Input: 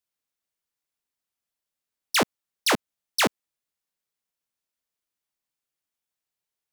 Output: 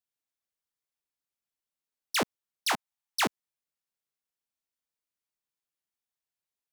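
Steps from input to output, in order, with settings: 2.71–3.25 s: resonant low shelf 640 Hz -6 dB, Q 3; trim -6 dB

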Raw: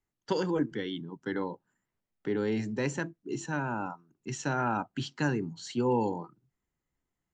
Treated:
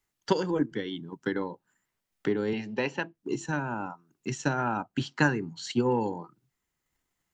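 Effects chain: 4.99–5.71 s: peaking EQ 820 Hz -> 2.8 kHz +6 dB 1.9 oct; transient shaper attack +6 dB, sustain -2 dB; 2.53–3.15 s: cabinet simulation 150–5100 Hz, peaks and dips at 150 Hz -7 dB, 310 Hz -5 dB, 830 Hz +7 dB, 2.8 kHz +9 dB; tape noise reduction on one side only encoder only

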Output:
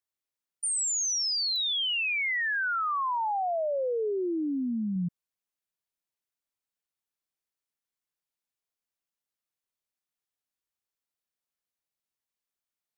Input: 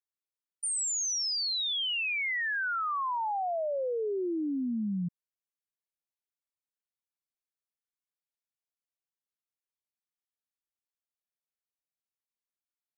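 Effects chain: 4.10–4.96 s: bass shelf 120 Hz -5 dB; clicks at 1.56 s, -29 dBFS; trim +2.5 dB

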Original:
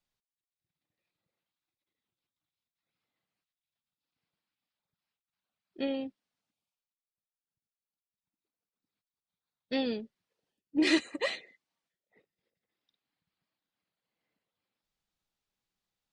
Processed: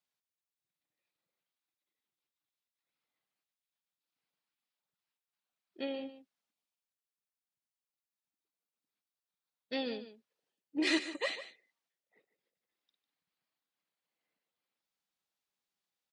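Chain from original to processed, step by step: high-pass 370 Hz 6 dB/octave; on a send: delay 149 ms -13 dB; on the sum: trim -2.5 dB

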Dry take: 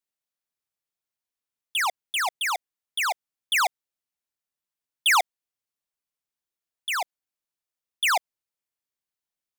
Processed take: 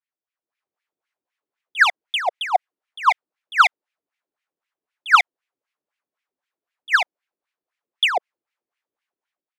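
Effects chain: compression, threshold -22 dBFS, peak gain reduction 3.5 dB; wah-wah 3.9 Hz 310–2400 Hz, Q 2.6; level rider; trim +6.5 dB

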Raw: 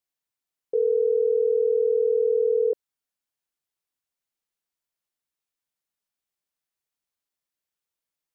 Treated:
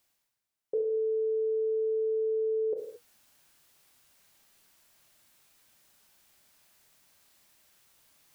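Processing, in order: band-stop 480 Hz, Q 12; reverse; upward compressor, threshold -45 dBFS; reverse; reverberation, pre-delay 23 ms, DRR 1.5 dB; trim -2 dB

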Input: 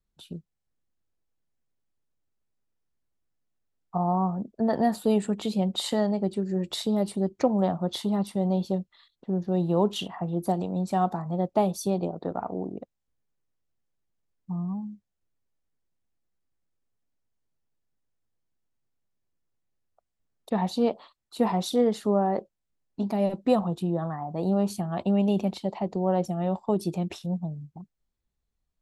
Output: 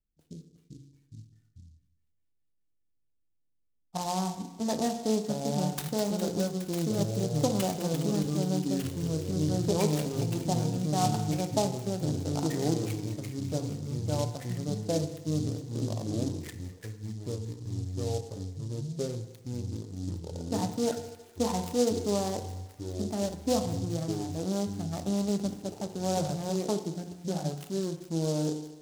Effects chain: local Wiener filter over 41 samples; ever faster or slower copies 314 ms, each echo -4 st, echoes 3; on a send: feedback echo behind a high-pass 206 ms, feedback 81%, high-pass 3.9 kHz, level -4 dB; on the sum: FDN reverb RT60 1 s, low-frequency decay 0.85×, high-frequency decay 0.6×, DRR 6 dB; delay time shaken by noise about 5.3 kHz, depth 0.077 ms; trim -5 dB

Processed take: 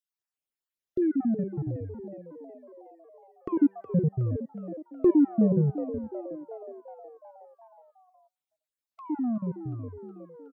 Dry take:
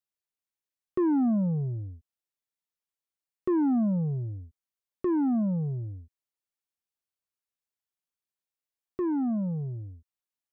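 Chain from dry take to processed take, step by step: random holes in the spectrogram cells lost 39%; de-hum 195 Hz, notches 10; 3.57–5.70 s: resonant low shelf 690 Hz +6 dB, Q 3; frequency-shifting echo 367 ms, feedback 59%, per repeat +78 Hz, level -12 dB

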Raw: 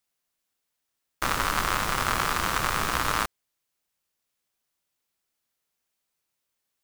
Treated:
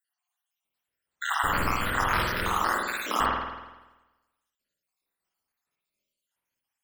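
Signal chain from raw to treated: random holes in the spectrogram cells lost 75%; 2.44–3.18 s: steep high-pass 190 Hz 72 dB/octave; spring tank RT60 1.1 s, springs 48 ms, chirp 35 ms, DRR -3.5 dB

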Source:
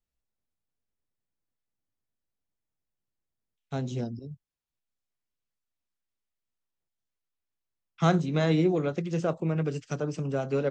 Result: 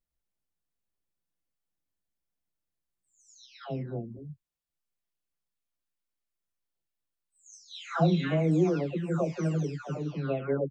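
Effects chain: delay that grows with frequency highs early, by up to 680 ms

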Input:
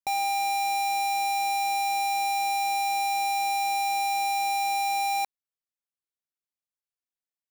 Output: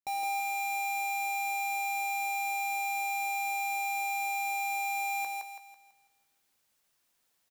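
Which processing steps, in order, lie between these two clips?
reverse; upward compressor, threshold -48 dBFS; reverse; doubling 15 ms -11 dB; thinning echo 165 ms, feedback 41%, high-pass 230 Hz, level -3 dB; trim -8 dB

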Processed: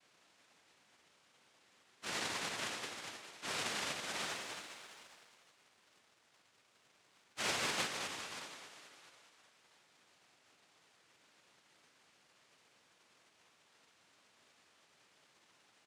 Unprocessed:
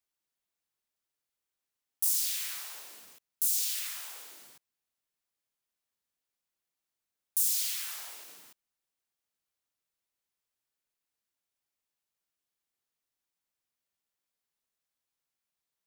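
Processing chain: spectral levelling over time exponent 0.2; waveshaping leveller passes 5; gate -10 dBFS, range -38 dB; simulated room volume 150 m³, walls hard, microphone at 0.49 m; dynamic bell 5 kHz, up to +7 dB, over -54 dBFS, Q 7.1; spectral gate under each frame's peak -15 dB weak; noise-vocoded speech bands 1; tone controls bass -2 dB, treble -8 dB; frequency-shifting echo 204 ms, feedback 62%, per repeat +53 Hz, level -9.5 dB; 4.16–7.82 s: waveshaping leveller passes 1; trim +8.5 dB

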